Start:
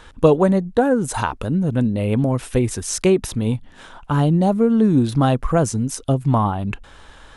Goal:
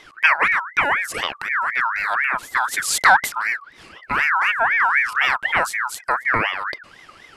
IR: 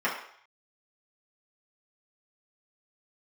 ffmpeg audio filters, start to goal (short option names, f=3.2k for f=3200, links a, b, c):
-filter_complex "[0:a]asplit=3[a][b][c];[a]afade=t=out:st=2.72:d=0.02[d];[b]acontrast=77,afade=t=in:st=2.72:d=0.02,afade=t=out:st=3.28:d=0.02[e];[c]afade=t=in:st=3.28:d=0.02[f];[d][e][f]amix=inputs=3:normalize=0,aeval=exprs='val(0)*sin(2*PI*1600*n/s+1600*0.3/4*sin(2*PI*4*n/s))':c=same"